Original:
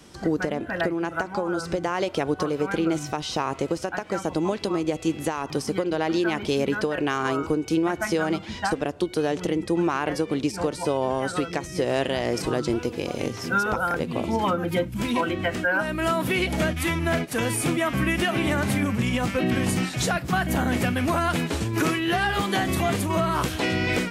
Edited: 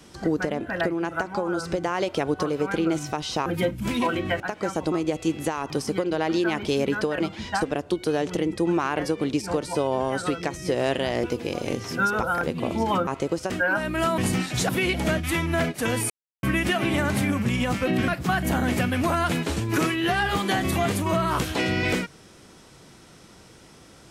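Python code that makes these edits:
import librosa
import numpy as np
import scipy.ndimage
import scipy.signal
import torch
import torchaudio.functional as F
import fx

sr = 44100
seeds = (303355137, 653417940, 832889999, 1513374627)

y = fx.edit(x, sr, fx.swap(start_s=3.46, length_s=0.43, other_s=14.6, other_length_s=0.94),
    fx.cut(start_s=4.41, length_s=0.31),
    fx.cut(start_s=7.0, length_s=1.3),
    fx.cut(start_s=12.34, length_s=0.43),
    fx.silence(start_s=17.63, length_s=0.33),
    fx.move(start_s=19.61, length_s=0.51, to_s=16.22), tone=tone)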